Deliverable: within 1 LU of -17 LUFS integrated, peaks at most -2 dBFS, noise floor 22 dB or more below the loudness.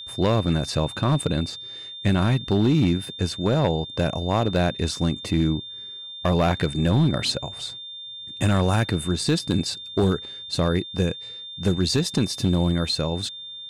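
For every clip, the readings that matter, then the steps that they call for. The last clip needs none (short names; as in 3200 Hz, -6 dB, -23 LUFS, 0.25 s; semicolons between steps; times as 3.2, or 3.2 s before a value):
clipped 1.1%; flat tops at -13.5 dBFS; steady tone 3600 Hz; tone level -35 dBFS; loudness -23.5 LUFS; peak -13.5 dBFS; loudness target -17.0 LUFS
-> clip repair -13.5 dBFS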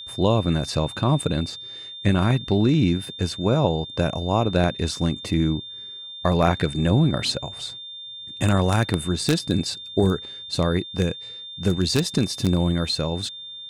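clipped 0.0%; steady tone 3600 Hz; tone level -35 dBFS
-> notch 3600 Hz, Q 30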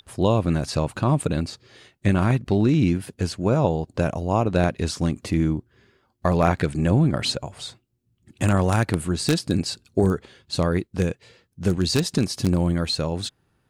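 steady tone none; loudness -23.0 LUFS; peak -4.5 dBFS; loudness target -17.0 LUFS
-> gain +6 dB; limiter -2 dBFS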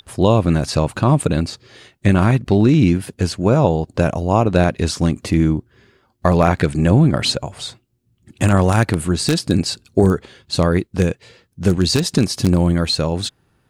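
loudness -17.5 LUFS; peak -2.0 dBFS; noise floor -63 dBFS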